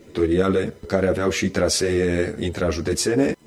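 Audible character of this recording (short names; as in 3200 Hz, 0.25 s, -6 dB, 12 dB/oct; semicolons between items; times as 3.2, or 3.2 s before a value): a quantiser's noise floor 12-bit, dither triangular; a shimmering, thickened sound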